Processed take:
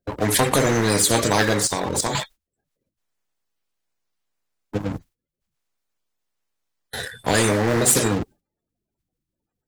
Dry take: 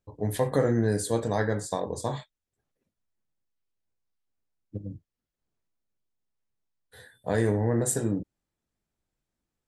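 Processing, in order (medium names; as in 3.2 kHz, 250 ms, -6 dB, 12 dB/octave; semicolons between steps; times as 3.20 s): coarse spectral quantiser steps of 30 dB; gate with hold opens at -51 dBFS; waveshaping leveller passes 1; 1.66–2.15 s: level held to a coarse grid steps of 12 dB; spectrum-flattening compressor 2:1; trim +7.5 dB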